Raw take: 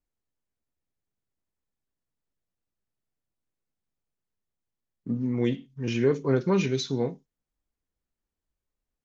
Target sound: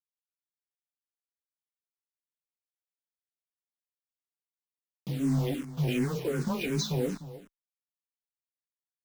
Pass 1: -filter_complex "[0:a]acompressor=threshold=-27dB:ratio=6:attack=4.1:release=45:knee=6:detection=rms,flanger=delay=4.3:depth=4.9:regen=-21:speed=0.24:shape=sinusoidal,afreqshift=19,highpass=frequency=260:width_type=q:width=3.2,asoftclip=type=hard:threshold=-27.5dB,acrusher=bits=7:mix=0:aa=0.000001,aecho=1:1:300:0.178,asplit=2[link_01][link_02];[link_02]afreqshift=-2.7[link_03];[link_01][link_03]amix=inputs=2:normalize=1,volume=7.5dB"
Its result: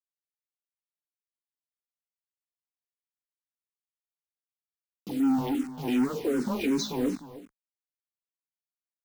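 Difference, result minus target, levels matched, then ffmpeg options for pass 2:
125 Hz band −13.0 dB
-filter_complex "[0:a]acompressor=threshold=-27dB:ratio=6:attack=4.1:release=45:knee=6:detection=rms,flanger=delay=4.3:depth=4.9:regen=-21:speed=0.24:shape=sinusoidal,afreqshift=19,highpass=frequency=100:width_type=q:width=3.2,asoftclip=type=hard:threshold=-27.5dB,acrusher=bits=7:mix=0:aa=0.000001,aecho=1:1:300:0.178,asplit=2[link_01][link_02];[link_02]afreqshift=-2.7[link_03];[link_01][link_03]amix=inputs=2:normalize=1,volume=7.5dB"

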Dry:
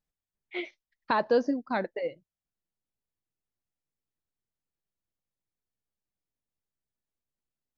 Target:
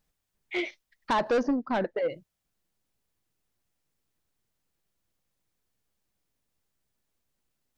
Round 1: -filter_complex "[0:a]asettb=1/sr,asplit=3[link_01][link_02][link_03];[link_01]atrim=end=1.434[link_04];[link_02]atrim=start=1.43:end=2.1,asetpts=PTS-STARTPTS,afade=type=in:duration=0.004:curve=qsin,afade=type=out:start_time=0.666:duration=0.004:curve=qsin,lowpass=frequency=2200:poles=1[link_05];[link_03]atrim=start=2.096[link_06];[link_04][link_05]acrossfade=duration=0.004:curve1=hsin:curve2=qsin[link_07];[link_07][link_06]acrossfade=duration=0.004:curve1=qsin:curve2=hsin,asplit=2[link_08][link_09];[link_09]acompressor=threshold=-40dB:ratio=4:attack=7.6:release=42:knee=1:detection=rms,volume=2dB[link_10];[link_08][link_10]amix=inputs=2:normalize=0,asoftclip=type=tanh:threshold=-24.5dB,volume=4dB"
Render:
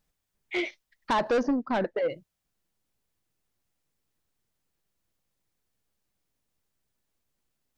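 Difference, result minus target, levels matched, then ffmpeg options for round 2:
downward compressor: peak gain reduction −5 dB
-filter_complex "[0:a]asettb=1/sr,asplit=3[link_01][link_02][link_03];[link_01]atrim=end=1.434[link_04];[link_02]atrim=start=1.43:end=2.1,asetpts=PTS-STARTPTS,afade=type=in:duration=0.004:curve=qsin,afade=type=out:start_time=0.666:duration=0.004:curve=qsin,lowpass=frequency=2200:poles=1[link_05];[link_03]atrim=start=2.096[link_06];[link_04][link_05]acrossfade=duration=0.004:curve1=hsin:curve2=qsin[link_07];[link_07][link_06]acrossfade=duration=0.004:curve1=qsin:curve2=hsin,asplit=2[link_08][link_09];[link_09]acompressor=threshold=-47dB:ratio=4:attack=7.6:release=42:knee=1:detection=rms,volume=2dB[link_10];[link_08][link_10]amix=inputs=2:normalize=0,asoftclip=type=tanh:threshold=-24.5dB,volume=4dB"

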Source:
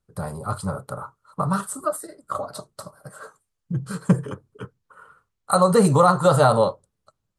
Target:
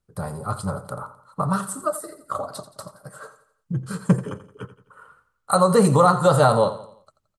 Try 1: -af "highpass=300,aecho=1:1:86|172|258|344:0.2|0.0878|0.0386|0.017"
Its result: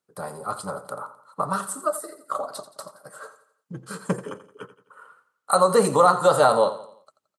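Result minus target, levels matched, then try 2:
250 Hz band −6.5 dB
-af "aecho=1:1:86|172|258|344:0.2|0.0878|0.0386|0.017"

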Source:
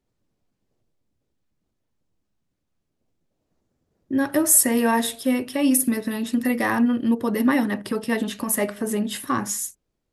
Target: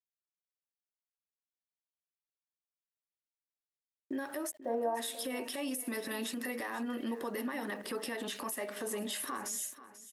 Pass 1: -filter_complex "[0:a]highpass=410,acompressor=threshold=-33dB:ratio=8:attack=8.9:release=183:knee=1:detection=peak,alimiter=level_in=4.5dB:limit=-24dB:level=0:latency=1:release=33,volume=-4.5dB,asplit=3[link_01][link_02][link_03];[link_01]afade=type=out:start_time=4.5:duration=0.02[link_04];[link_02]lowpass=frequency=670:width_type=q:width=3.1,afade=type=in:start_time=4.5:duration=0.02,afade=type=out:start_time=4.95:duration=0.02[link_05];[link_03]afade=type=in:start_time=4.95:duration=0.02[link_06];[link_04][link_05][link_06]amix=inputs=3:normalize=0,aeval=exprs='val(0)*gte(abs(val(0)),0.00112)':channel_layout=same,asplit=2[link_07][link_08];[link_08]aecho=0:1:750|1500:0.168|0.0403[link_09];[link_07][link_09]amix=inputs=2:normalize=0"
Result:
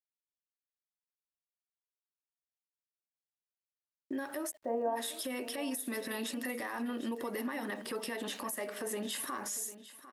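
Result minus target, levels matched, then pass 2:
echo 262 ms late
-filter_complex "[0:a]highpass=410,acompressor=threshold=-33dB:ratio=8:attack=8.9:release=183:knee=1:detection=peak,alimiter=level_in=4.5dB:limit=-24dB:level=0:latency=1:release=33,volume=-4.5dB,asplit=3[link_01][link_02][link_03];[link_01]afade=type=out:start_time=4.5:duration=0.02[link_04];[link_02]lowpass=frequency=670:width_type=q:width=3.1,afade=type=in:start_time=4.5:duration=0.02,afade=type=out:start_time=4.95:duration=0.02[link_05];[link_03]afade=type=in:start_time=4.95:duration=0.02[link_06];[link_04][link_05][link_06]amix=inputs=3:normalize=0,aeval=exprs='val(0)*gte(abs(val(0)),0.00112)':channel_layout=same,asplit=2[link_07][link_08];[link_08]aecho=0:1:488|976:0.168|0.0403[link_09];[link_07][link_09]amix=inputs=2:normalize=0"

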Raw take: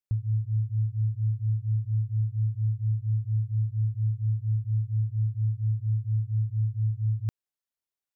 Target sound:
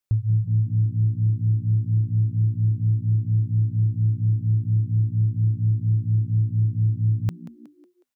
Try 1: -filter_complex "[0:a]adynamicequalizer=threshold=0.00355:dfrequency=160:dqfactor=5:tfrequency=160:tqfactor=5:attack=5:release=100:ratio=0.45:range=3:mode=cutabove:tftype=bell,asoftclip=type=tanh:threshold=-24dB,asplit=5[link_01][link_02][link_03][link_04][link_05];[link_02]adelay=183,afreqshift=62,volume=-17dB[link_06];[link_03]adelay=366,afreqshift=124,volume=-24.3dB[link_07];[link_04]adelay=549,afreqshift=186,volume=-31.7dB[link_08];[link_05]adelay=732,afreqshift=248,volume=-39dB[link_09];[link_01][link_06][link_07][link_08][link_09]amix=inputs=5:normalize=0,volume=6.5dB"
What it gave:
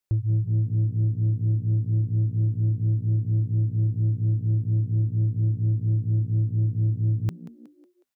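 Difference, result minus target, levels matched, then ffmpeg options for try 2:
soft clipping: distortion +16 dB
-filter_complex "[0:a]adynamicequalizer=threshold=0.00355:dfrequency=160:dqfactor=5:tfrequency=160:tqfactor=5:attack=5:release=100:ratio=0.45:range=3:mode=cutabove:tftype=bell,asoftclip=type=tanh:threshold=-14.5dB,asplit=5[link_01][link_02][link_03][link_04][link_05];[link_02]adelay=183,afreqshift=62,volume=-17dB[link_06];[link_03]adelay=366,afreqshift=124,volume=-24.3dB[link_07];[link_04]adelay=549,afreqshift=186,volume=-31.7dB[link_08];[link_05]adelay=732,afreqshift=248,volume=-39dB[link_09];[link_01][link_06][link_07][link_08][link_09]amix=inputs=5:normalize=0,volume=6.5dB"

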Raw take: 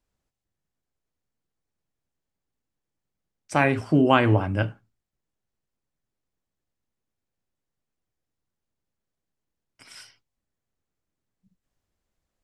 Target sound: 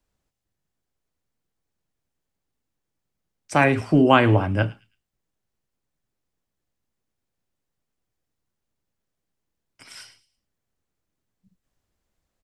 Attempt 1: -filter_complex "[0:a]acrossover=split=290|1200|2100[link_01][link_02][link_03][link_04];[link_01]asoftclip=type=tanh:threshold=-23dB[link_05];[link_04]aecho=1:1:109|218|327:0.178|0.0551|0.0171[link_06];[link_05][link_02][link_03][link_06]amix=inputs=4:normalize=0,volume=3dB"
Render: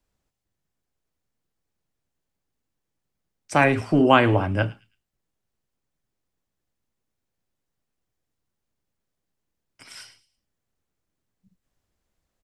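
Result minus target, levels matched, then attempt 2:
soft clipping: distortion +11 dB
-filter_complex "[0:a]acrossover=split=290|1200|2100[link_01][link_02][link_03][link_04];[link_01]asoftclip=type=tanh:threshold=-14dB[link_05];[link_04]aecho=1:1:109|218|327:0.178|0.0551|0.0171[link_06];[link_05][link_02][link_03][link_06]amix=inputs=4:normalize=0,volume=3dB"

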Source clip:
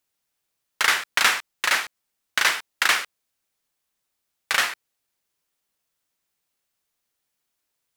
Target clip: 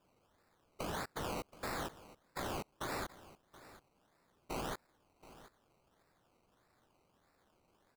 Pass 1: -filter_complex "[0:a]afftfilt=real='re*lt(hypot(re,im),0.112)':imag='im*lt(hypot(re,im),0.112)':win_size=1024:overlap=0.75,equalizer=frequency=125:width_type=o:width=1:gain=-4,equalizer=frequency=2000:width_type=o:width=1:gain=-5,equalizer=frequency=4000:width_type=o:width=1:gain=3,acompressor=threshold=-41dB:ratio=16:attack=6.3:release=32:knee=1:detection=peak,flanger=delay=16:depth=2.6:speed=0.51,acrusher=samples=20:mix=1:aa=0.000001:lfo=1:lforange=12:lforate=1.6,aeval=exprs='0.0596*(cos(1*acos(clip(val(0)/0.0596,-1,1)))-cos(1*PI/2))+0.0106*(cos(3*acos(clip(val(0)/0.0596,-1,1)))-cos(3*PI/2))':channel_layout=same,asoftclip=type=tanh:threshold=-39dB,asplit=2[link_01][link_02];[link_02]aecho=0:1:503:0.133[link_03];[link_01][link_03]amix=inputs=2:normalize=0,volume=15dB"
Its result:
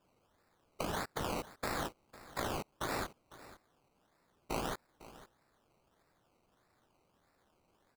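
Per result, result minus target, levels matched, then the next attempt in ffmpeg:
echo 224 ms early; soft clipping: distortion −8 dB
-filter_complex "[0:a]afftfilt=real='re*lt(hypot(re,im),0.112)':imag='im*lt(hypot(re,im),0.112)':win_size=1024:overlap=0.75,equalizer=frequency=125:width_type=o:width=1:gain=-4,equalizer=frequency=2000:width_type=o:width=1:gain=-5,equalizer=frequency=4000:width_type=o:width=1:gain=3,acompressor=threshold=-41dB:ratio=16:attack=6.3:release=32:knee=1:detection=peak,flanger=delay=16:depth=2.6:speed=0.51,acrusher=samples=20:mix=1:aa=0.000001:lfo=1:lforange=12:lforate=1.6,aeval=exprs='0.0596*(cos(1*acos(clip(val(0)/0.0596,-1,1)))-cos(1*PI/2))+0.0106*(cos(3*acos(clip(val(0)/0.0596,-1,1)))-cos(3*PI/2))':channel_layout=same,asoftclip=type=tanh:threshold=-39dB,asplit=2[link_01][link_02];[link_02]aecho=0:1:727:0.133[link_03];[link_01][link_03]amix=inputs=2:normalize=0,volume=15dB"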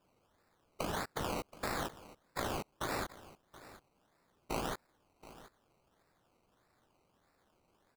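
soft clipping: distortion −8 dB
-filter_complex "[0:a]afftfilt=real='re*lt(hypot(re,im),0.112)':imag='im*lt(hypot(re,im),0.112)':win_size=1024:overlap=0.75,equalizer=frequency=125:width_type=o:width=1:gain=-4,equalizer=frequency=2000:width_type=o:width=1:gain=-5,equalizer=frequency=4000:width_type=o:width=1:gain=3,acompressor=threshold=-41dB:ratio=16:attack=6.3:release=32:knee=1:detection=peak,flanger=delay=16:depth=2.6:speed=0.51,acrusher=samples=20:mix=1:aa=0.000001:lfo=1:lforange=12:lforate=1.6,aeval=exprs='0.0596*(cos(1*acos(clip(val(0)/0.0596,-1,1)))-cos(1*PI/2))+0.0106*(cos(3*acos(clip(val(0)/0.0596,-1,1)))-cos(3*PI/2))':channel_layout=same,asoftclip=type=tanh:threshold=-49.5dB,asplit=2[link_01][link_02];[link_02]aecho=0:1:727:0.133[link_03];[link_01][link_03]amix=inputs=2:normalize=0,volume=15dB"

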